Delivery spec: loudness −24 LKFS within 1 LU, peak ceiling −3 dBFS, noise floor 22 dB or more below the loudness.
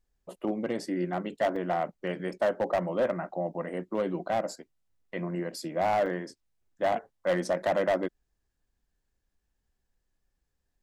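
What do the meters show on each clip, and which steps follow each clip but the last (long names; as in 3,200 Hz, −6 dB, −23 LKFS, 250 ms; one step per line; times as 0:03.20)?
share of clipped samples 1.2%; peaks flattened at −20.5 dBFS; number of dropouts 2; longest dropout 1.1 ms; integrated loudness −30.5 LKFS; sample peak −20.5 dBFS; target loudness −24.0 LKFS
→ clipped peaks rebuilt −20.5 dBFS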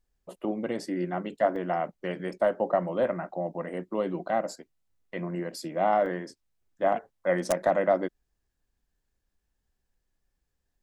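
share of clipped samples 0.0%; number of dropouts 2; longest dropout 1.1 ms
→ repair the gap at 0:01.56/0:06.06, 1.1 ms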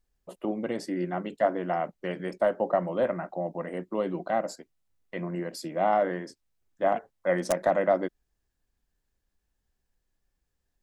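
number of dropouts 0; integrated loudness −29.5 LKFS; sample peak −11.5 dBFS; target loudness −24.0 LKFS
→ level +5.5 dB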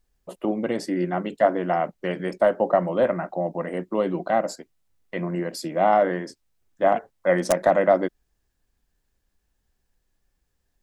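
integrated loudness −24.0 LKFS; sample peak −6.0 dBFS; background noise floor −74 dBFS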